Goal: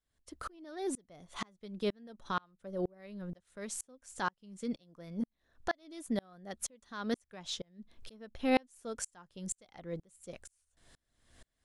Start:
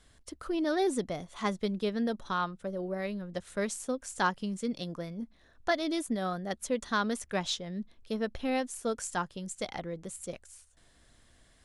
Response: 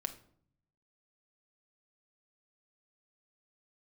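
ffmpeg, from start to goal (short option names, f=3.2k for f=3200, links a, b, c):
-filter_complex "[0:a]alimiter=level_in=1.5dB:limit=-24dB:level=0:latency=1:release=405,volume=-1.5dB,asplit=3[a][b][c];[a]afade=t=out:st=7.78:d=0.02[d];[b]acontrast=31,afade=t=in:st=7.78:d=0.02,afade=t=out:st=8.68:d=0.02[e];[c]afade=t=in:st=8.68:d=0.02[f];[d][e][f]amix=inputs=3:normalize=0,aeval=exprs='val(0)*pow(10,-35*if(lt(mod(-2.1*n/s,1),2*abs(-2.1)/1000),1-mod(-2.1*n/s,1)/(2*abs(-2.1)/1000),(mod(-2.1*n/s,1)-2*abs(-2.1)/1000)/(1-2*abs(-2.1)/1000))/20)':c=same,volume=5.5dB"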